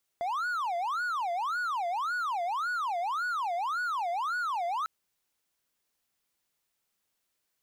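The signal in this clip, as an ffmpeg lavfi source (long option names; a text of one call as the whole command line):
ffmpeg -f lavfi -i "aevalsrc='0.0473*(1-4*abs(mod((1077*t-393/(2*PI*1.8)*sin(2*PI*1.8*t))+0.25,1)-0.5))':duration=4.65:sample_rate=44100" out.wav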